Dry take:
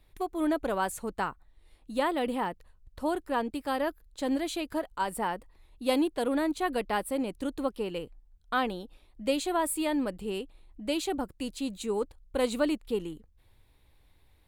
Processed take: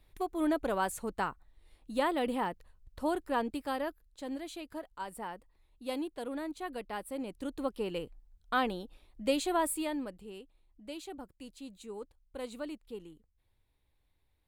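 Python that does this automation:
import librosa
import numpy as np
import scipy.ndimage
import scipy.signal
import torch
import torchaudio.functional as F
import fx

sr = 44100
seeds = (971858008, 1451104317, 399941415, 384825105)

y = fx.gain(x, sr, db=fx.line((3.52, -2.0), (4.24, -10.0), (6.91, -10.0), (7.92, -1.5), (9.63, -1.5), (10.3, -13.0)))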